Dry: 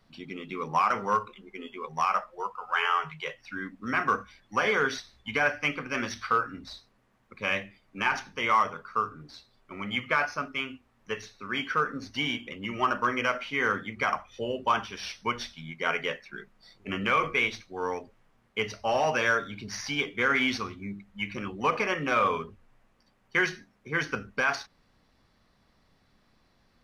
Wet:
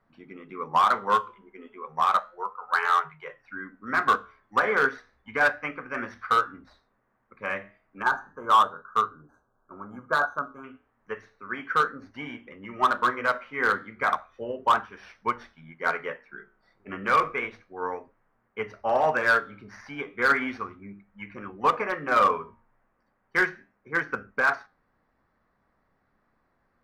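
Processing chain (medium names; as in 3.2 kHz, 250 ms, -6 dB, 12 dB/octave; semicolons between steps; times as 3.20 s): tone controls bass -5 dB, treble -5 dB; time-frequency box 8.03–10.64 s, 1.7–5.9 kHz -27 dB; resonant high shelf 2.3 kHz -11.5 dB, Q 1.5; hard clipper -17.5 dBFS, distortion -18 dB; flange 0.33 Hz, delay 8.4 ms, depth 7.8 ms, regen -80%; upward expansion 1.5:1, over -39 dBFS; trim +9 dB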